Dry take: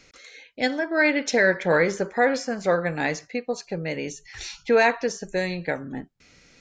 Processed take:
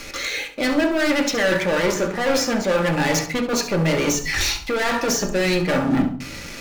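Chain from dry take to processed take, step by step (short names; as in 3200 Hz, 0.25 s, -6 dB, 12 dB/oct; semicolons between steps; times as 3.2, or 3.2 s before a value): notches 60/120/180/240 Hz; reverse; compressor 12:1, threshold -31 dBFS, peak gain reduction 17 dB; reverse; sample leveller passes 5; flutter echo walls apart 11.8 m, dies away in 0.34 s; reverb RT60 0.45 s, pre-delay 3 ms, DRR 2.5 dB; gain +2 dB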